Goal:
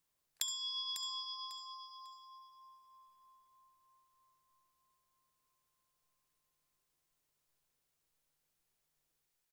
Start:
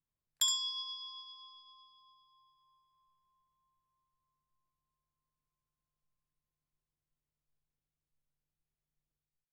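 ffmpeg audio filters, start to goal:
ffmpeg -i in.wav -af "bass=frequency=250:gain=-12,treble=frequency=4000:gain=3,acompressor=threshold=-46dB:ratio=10,aecho=1:1:548|1096|1644:0.376|0.0864|0.0199,volume=9dB" out.wav

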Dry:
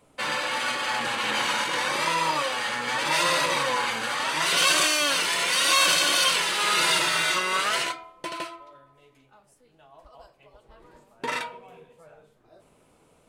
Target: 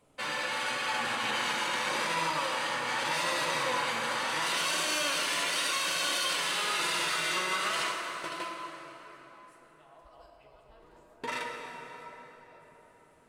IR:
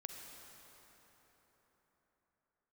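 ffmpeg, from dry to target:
-filter_complex "[0:a]alimiter=limit=-16.5dB:level=0:latency=1[link_01];[1:a]atrim=start_sample=2205,asetrate=48510,aresample=44100[link_02];[link_01][link_02]afir=irnorm=-1:irlink=0"

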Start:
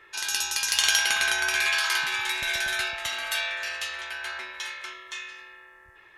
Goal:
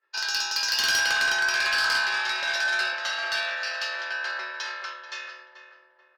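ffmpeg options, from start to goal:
ffmpeg -i in.wav -filter_complex "[0:a]agate=range=-33dB:threshold=-39dB:ratio=3:detection=peak,highpass=470,equalizer=frequency=560:width_type=q:width=4:gain=6,equalizer=frequency=1500:width_type=q:width=4:gain=4,equalizer=frequency=2200:width_type=q:width=4:gain=-9,equalizer=frequency=3400:width_type=q:width=4:gain=-7,equalizer=frequency=4900:width_type=q:width=4:gain=9,lowpass=frequency=5200:width=0.5412,lowpass=frequency=5200:width=1.3066,asplit=2[link_01][link_02];[link_02]adelay=435,lowpass=frequency=1200:poles=1,volume=-7.5dB,asplit=2[link_03][link_04];[link_04]adelay=435,lowpass=frequency=1200:poles=1,volume=0.45,asplit=2[link_05][link_06];[link_06]adelay=435,lowpass=frequency=1200:poles=1,volume=0.45,asplit=2[link_07][link_08];[link_08]adelay=435,lowpass=frequency=1200:poles=1,volume=0.45,asplit=2[link_09][link_10];[link_10]adelay=435,lowpass=frequency=1200:poles=1,volume=0.45[link_11];[link_03][link_05][link_07][link_09][link_11]amix=inputs=5:normalize=0[link_12];[link_01][link_12]amix=inputs=2:normalize=0,acontrast=61,asoftclip=type=tanh:threshold=-14.5dB,volume=-3dB" out.wav

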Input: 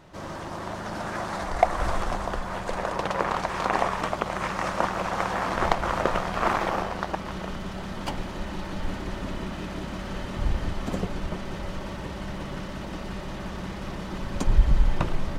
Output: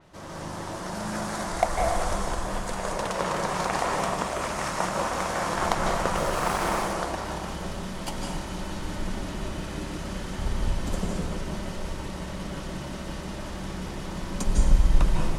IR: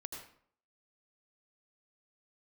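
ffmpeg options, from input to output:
-filter_complex "[0:a]crystalizer=i=1:c=0,asettb=1/sr,asplit=3[link_01][link_02][link_03];[link_01]atrim=end=6.174[link_04];[link_02]atrim=start=6.17:end=6.93,asetpts=PTS-STARTPTS,afade=type=in:duration=0.004:curve=qsin,afade=type=out:start_time=0.756:duration=0.004:curve=qsin,acrusher=bits=5:mix=0:aa=0.5[link_05];[link_03]atrim=start=6.926[link_06];[link_04][link_05]acrossfade=duration=0.004:curve1=hsin:curve2=qsin[link_07];[link_07][link_06]acrossfade=duration=0.004:curve1=qsin:curve2=hsin[link_08];[1:a]atrim=start_sample=2205,asetrate=22491,aresample=44100[link_09];[link_08][link_09]afir=irnorm=-1:irlink=0,adynamicequalizer=threshold=0.00501:dfrequency=4900:dqfactor=0.7:tfrequency=4900:tqfactor=0.7:attack=5:release=100:ratio=0.375:range=3.5:mode=boostabove:tftype=highshelf,volume=-3dB"

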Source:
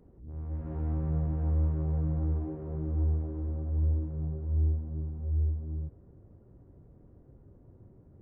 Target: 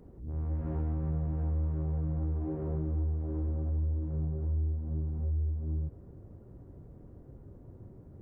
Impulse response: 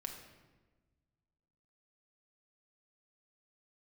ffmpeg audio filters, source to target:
-af "acompressor=threshold=-34dB:ratio=5,volume=5dB"

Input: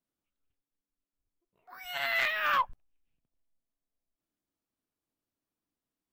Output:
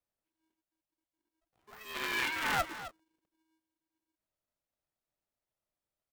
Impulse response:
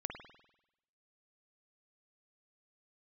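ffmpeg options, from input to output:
-filter_complex "[0:a]equalizer=frequency=460:width=1.5:gain=4.5,asplit=2[link_01][link_02];[link_02]adelay=260,highpass=300,lowpass=3400,asoftclip=type=hard:threshold=-26dB,volume=-10dB[link_03];[link_01][link_03]amix=inputs=2:normalize=0,aeval=exprs='val(0)*sgn(sin(2*PI*320*n/s))':channel_layout=same,volume=-4.5dB"

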